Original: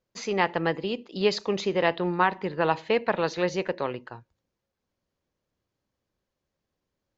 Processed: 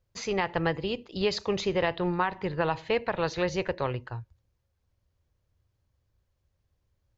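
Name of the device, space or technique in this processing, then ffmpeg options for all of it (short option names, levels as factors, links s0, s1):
car stereo with a boomy subwoofer: -af "lowshelf=f=140:t=q:w=1.5:g=13.5,alimiter=limit=0.168:level=0:latency=1:release=157"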